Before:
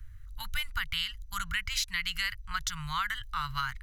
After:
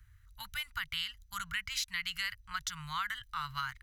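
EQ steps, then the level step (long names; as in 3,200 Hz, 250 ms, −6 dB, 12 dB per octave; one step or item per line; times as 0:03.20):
high-pass filter 120 Hz 6 dB per octave
−4.0 dB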